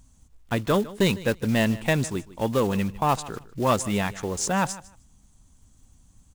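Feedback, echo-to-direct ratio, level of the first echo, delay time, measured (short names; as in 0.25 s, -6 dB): 17%, -18.5 dB, -18.5 dB, 0.153 s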